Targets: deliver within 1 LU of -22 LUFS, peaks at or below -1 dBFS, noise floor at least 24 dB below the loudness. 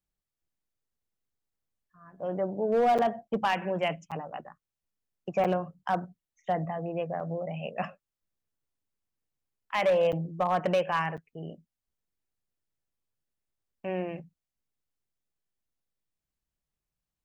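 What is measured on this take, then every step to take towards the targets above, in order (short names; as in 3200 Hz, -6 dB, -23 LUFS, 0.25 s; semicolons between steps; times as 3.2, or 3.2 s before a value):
clipped 0.4%; flat tops at -19.0 dBFS; dropouts 6; longest dropout 7.0 ms; loudness -30.0 LUFS; peak -19.0 dBFS; loudness target -22.0 LUFS
-> clip repair -19 dBFS; interpolate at 2.98/4.11/5.44/7.2/10.12/11.17, 7 ms; gain +8 dB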